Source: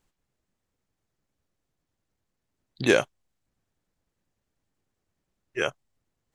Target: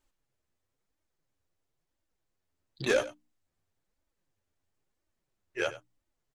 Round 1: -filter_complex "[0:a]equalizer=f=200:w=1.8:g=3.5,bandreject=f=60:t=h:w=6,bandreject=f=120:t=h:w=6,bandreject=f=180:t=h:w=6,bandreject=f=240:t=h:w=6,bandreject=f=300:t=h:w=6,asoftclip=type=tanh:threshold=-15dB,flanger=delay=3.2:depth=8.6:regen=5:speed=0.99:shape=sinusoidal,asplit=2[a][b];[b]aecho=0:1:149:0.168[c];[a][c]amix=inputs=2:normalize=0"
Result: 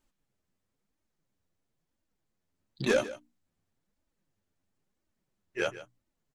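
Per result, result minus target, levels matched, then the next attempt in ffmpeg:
echo 55 ms late; 250 Hz band +3.0 dB
-filter_complex "[0:a]equalizer=f=200:w=1.8:g=3.5,bandreject=f=60:t=h:w=6,bandreject=f=120:t=h:w=6,bandreject=f=180:t=h:w=6,bandreject=f=240:t=h:w=6,bandreject=f=300:t=h:w=6,asoftclip=type=tanh:threshold=-15dB,flanger=delay=3.2:depth=8.6:regen=5:speed=0.99:shape=sinusoidal,asplit=2[a][b];[b]aecho=0:1:94:0.168[c];[a][c]amix=inputs=2:normalize=0"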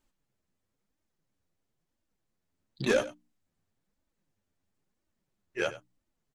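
250 Hz band +3.0 dB
-filter_complex "[0:a]equalizer=f=200:w=1.8:g=-5.5,bandreject=f=60:t=h:w=6,bandreject=f=120:t=h:w=6,bandreject=f=180:t=h:w=6,bandreject=f=240:t=h:w=6,bandreject=f=300:t=h:w=6,asoftclip=type=tanh:threshold=-15dB,flanger=delay=3.2:depth=8.6:regen=5:speed=0.99:shape=sinusoidal,asplit=2[a][b];[b]aecho=0:1:94:0.168[c];[a][c]amix=inputs=2:normalize=0"

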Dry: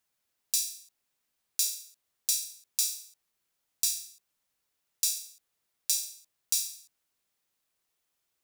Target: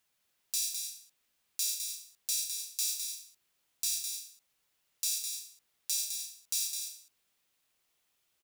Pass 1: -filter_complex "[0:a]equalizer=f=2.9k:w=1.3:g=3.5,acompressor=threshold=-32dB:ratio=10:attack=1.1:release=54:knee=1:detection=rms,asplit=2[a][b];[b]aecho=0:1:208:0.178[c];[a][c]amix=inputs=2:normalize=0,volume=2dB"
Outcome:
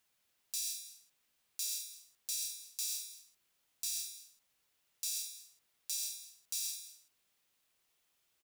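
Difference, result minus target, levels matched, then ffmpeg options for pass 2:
echo-to-direct -9 dB; compressor: peak gain reduction +6 dB
-filter_complex "[0:a]equalizer=f=2.9k:w=1.3:g=3.5,acompressor=threshold=-25.5dB:ratio=10:attack=1.1:release=54:knee=1:detection=rms,asplit=2[a][b];[b]aecho=0:1:208:0.501[c];[a][c]amix=inputs=2:normalize=0,volume=2dB"

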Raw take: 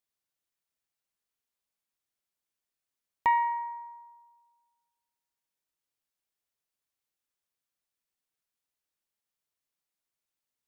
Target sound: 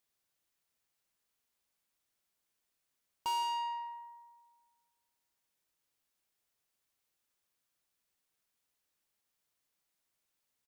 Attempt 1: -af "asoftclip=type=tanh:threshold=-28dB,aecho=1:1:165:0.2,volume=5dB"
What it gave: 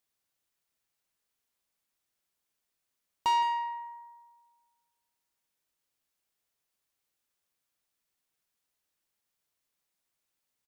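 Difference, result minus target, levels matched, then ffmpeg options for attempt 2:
soft clip: distortion -5 dB
-af "asoftclip=type=tanh:threshold=-37dB,aecho=1:1:165:0.2,volume=5dB"

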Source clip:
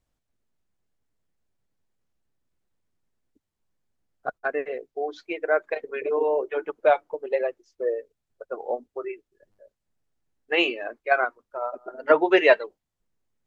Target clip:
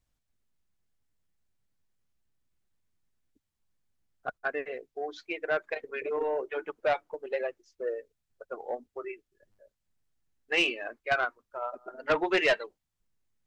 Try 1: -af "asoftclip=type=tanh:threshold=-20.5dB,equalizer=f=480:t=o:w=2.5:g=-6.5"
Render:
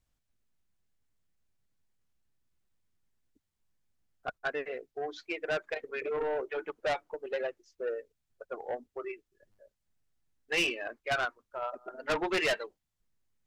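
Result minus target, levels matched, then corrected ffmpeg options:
soft clip: distortion +6 dB
-af "asoftclip=type=tanh:threshold=-13dB,equalizer=f=480:t=o:w=2.5:g=-6.5"

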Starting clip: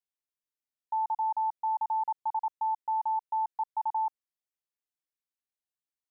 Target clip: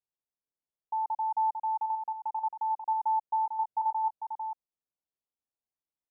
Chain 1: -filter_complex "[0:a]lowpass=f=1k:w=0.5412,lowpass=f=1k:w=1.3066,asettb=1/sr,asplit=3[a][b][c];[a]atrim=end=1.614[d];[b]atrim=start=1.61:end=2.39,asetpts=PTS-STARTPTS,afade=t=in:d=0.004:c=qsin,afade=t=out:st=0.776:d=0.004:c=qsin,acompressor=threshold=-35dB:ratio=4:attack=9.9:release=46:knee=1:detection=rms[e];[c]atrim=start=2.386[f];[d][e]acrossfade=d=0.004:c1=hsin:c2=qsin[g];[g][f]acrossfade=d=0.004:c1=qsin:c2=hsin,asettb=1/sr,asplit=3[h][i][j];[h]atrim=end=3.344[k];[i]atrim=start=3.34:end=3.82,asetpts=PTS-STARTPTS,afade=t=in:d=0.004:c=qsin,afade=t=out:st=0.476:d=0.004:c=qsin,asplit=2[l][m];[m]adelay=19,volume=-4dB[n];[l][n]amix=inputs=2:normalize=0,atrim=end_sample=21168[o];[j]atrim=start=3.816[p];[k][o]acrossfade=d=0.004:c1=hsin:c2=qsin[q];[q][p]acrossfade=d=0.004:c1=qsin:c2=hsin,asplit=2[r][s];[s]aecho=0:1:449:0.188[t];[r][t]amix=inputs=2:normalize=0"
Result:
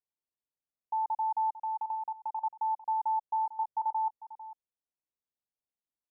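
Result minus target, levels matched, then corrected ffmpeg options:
echo-to-direct -9.5 dB
-filter_complex "[0:a]lowpass=f=1k:w=0.5412,lowpass=f=1k:w=1.3066,asettb=1/sr,asplit=3[a][b][c];[a]atrim=end=1.614[d];[b]atrim=start=1.61:end=2.39,asetpts=PTS-STARTPTS,afade=t=in:d=0.004:c=qsin,afade=t=out:st=0.776:d=0.004:c=qsin,acompressor=threshold=-35dB:ratio=4:attack=9.9:release=46:knee=1:detection=rms[e];[c]atrim=start=2.386[f];[d][e]acrossfade=d=0.004:c1=hsin:c2=qsin[g];[g][f]acrossfade=d=0.004:c1=qsin:c2=hsin,asettb=1/sr,asplit=3[h][i][j];[h]atrim=end=3.344[k];[i]atrim=start=3.34:end=3.82,asetpts=PTS-STARTPTS,afade=t=in:d=0.004:c=qsin,afade=t=out:st=0.476:d=0.004:c=qsin,asplit=2[l][m];[m]adelay=19,volume=-4dB[n];[l][n]amix=inputs=2:normalize=0,atrim=end_sample=21168[o];[j]atrim=start=3.816[p];[k][o]acrossfade=d=0.004:c1=hsin:c2=qsin[q];[q][p]acrossfade=d=0.004:c1=qsin:c2=hsin,asplit=2[r][s];[s]aecho=0:1:449:0.562[t];[r][t]amix=inputs=2:normalize=0"

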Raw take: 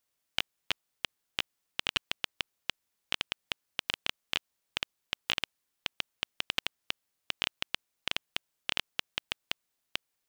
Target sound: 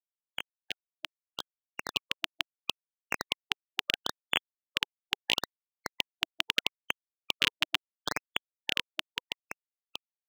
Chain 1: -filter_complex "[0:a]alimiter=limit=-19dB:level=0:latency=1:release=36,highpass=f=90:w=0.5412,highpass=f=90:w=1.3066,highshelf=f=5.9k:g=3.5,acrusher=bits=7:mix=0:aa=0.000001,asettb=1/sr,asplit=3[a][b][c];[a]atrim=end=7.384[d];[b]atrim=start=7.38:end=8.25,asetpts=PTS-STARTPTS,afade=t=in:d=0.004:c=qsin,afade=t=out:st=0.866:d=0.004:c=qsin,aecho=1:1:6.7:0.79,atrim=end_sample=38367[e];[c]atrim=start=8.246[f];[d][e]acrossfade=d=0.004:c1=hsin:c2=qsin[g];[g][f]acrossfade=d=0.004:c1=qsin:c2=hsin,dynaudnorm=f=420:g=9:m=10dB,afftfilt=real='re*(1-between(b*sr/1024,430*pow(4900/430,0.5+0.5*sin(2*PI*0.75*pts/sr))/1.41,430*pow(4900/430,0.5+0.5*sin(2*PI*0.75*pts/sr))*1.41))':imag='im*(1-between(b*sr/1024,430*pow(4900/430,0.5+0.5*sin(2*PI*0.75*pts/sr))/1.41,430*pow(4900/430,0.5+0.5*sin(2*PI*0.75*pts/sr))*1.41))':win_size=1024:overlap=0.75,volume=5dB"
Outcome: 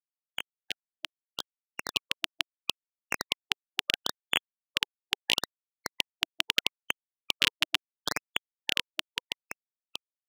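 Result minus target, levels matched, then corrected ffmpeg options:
8000 Hz band +3.0 dB
-filter_complex "[0:a]alimiter=limit=-19dB:level=0:latency=1:release=36,highpass=f=90:w=0.5412,highpass=f=90:w=1.3066,highshelf=f=5.9k:g=-6.5,acrusher=bits=7:mix=0:aa=0.000001,asettb=1/sr,asplit=3[a][b][c];[a]atrim=end=7.384[d];[b]atrim=start=7.38:end=8.25,asetpts=PTS-STARTPTS,afade=t=in:d=0.004:c=qsin,afade=t=out:st=0.866:d=0.004:c=qsin,aecho=1:1:6.7:0.79,atrim=end_sample=38367[e];[c]atrim=start=8.246[f];[d][e]acrossfade=d=0.004:c1=hsin:c2=qsin[g];[g][f]acrossfade=d=0.004:c1=qsin:c2=hsin,dynaudnorm=f=420:g=9:m=10dB,afftfilt=real='re*(1-between(b*sr/1024,430*pow(4900/430,0.5+0.5*sin(2*PI*0.75*pts/sr))/1.41,430*pow(4900/430,0.5+0.5*sin(2*PI*0.75*pts/sr))*1.41))':imag='im*(1-between(b*sr/1024,430*pow(4900/430,0.5+0.5*sin(2*PI*0.75*pts/sr))/1.41,430*pow(4900/430,0.5+0.5*sin(2*PI*0.75*pts/sr))*1.41))':win_size=1024:overlap=0.75,volume=5dB"

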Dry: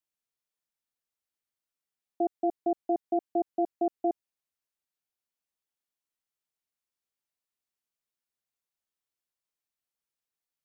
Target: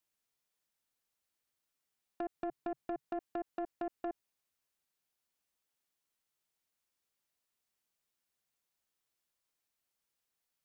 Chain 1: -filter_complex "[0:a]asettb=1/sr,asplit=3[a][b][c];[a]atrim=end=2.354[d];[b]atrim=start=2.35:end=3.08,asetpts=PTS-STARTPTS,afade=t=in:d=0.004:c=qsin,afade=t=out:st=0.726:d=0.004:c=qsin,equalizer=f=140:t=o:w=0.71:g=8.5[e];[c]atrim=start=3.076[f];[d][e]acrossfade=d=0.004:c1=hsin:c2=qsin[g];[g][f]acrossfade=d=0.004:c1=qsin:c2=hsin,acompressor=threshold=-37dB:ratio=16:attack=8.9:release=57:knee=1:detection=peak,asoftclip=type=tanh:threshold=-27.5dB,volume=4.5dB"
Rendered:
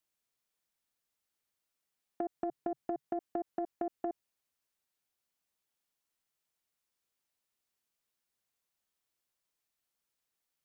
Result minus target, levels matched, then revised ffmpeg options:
soft clip: distortion -8 dB
-filter_complex "[0:a]asettb=1/sr,asplit=3[a][b][c];[a]atrim=end=2.354[d];[b]atrim=start=2.35:end=3.08,asetpts=PTS-STARTPTS,afade=t=in:d=0.004:c=qsin,afade=t=out:st=0.726:d=0.004:c=qsin,equalizer=f=140:t=o:w=0.71:g=8.5[e];[c]atrim=start=3.076[f];[d][e]acrossfade=d=0.004:c1=hsin:c2=qsin[g];[g][f]acrossfade=d=0.004:c1=qsin:c2=hsin,acompressor=threshold=-37dB:ratio=16:attack=8.9:release=57:knee=1:detection=peak,asoftclip=type=tanh:threshold=-35.5dB,volume=4.5dB"

